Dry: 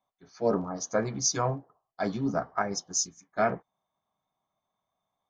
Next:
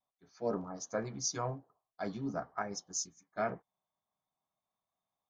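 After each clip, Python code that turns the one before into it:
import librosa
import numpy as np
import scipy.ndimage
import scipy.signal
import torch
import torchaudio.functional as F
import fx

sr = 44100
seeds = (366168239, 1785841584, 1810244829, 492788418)

y = fx.vibrato(x, sr, rate_hz=0.46, depth_cents=20.0)
y = y * 10.0 ** (-8.5 / 20.0)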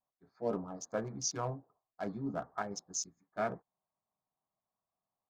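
y = fx.wiener(x, sr, points=15)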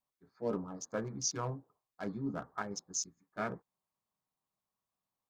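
y = fx.peak_eq(x, sr, hz=690.0, db=-8.0, octaves=0.44)
y = y * 10.0 ** (1.0 / 20.0)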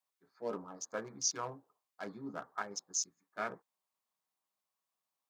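y = fx.highpass(x, sr, hz=660.0, slope=6)
y = y * 10.0 ** (1.5 / 20.0)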